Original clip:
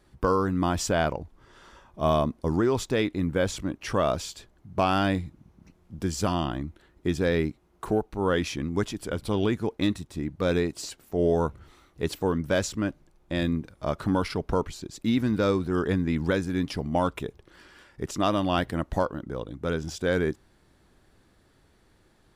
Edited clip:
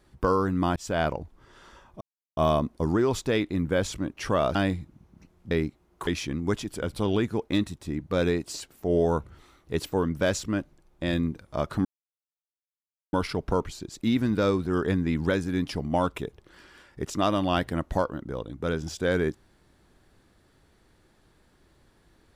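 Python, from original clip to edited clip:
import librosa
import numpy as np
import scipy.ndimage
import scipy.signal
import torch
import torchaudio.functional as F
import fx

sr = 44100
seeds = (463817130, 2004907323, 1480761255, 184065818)

y = fx.edit(x, sr, fx.fade_in_span(start_s=0.76, length_s=0.36, curve='qsin'),
    fx.insert_silence(at_s=2.01, length_s=0.36),
    fx.cut(start_s=4.19, length_s=0.81),
    fx.cut(start_s=5.96, length_s=1.37),
    fx.cut(start_s=7.89, length_s=0.47),
    fx.insert_silence(at_s=14.14, length_s=1.28), tone=tone)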